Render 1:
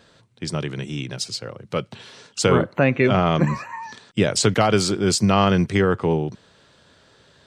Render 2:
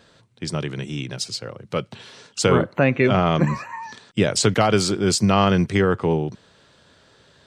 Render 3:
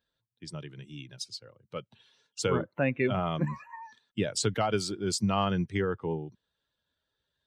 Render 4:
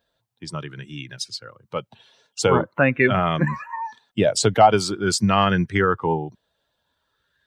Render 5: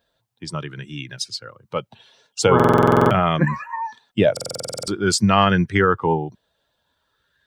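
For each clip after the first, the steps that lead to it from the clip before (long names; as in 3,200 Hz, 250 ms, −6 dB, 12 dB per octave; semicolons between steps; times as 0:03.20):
no processing that can be heard
spectral dynamics exaggerated over time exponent 1.5; level −8 dB
auto-filter bell 0.46 Hz 660–1,800 Hz +11 dB; level +8 dB
buffer that repeats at 0:02.55/0:04.32, samples 2,048, times 11; level +2.5 dB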